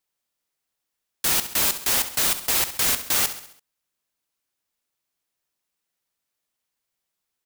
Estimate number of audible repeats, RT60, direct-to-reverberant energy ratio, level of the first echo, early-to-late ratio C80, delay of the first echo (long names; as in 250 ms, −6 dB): 4, no reverb audible, no reverb audible, −12.0 dB, no reverb audible, 67 ms